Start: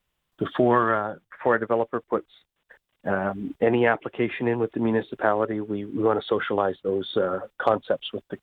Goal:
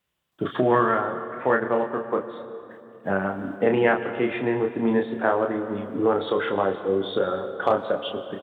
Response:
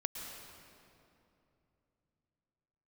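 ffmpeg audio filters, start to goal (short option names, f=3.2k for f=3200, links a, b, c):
-filter_complex "[0:a]highpass=87,asplit=2[a][b];[b]adelay=31,volume=-5dB[c];[a][c]amix=inputs=2:normalize=0,asplit=2[d][e];[1:a]atrim=start_sample=2205[f];[e][f]afir=irnorm=-1:irlink=0,volume=-3.5dB[g];[d][g]amix=inputs=2:normalize=0,volume=-5dB"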